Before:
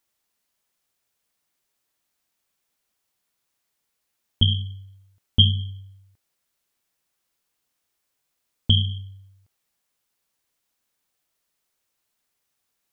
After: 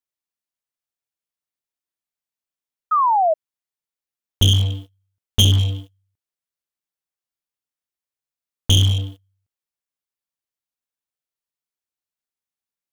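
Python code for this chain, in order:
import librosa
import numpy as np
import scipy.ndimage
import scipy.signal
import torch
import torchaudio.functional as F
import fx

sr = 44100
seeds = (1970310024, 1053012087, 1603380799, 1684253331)

y = fx.leveller(x, sr, passes=5)
y = fx.spec_paint(y, sr, seeds[0], shape='fall', start_s=2.91, length_s=0.43, low_hz=610.0, high_hz=1300.0, level_db=-10.0)
y = y * 10.0 ** (-6.0 / 20.0)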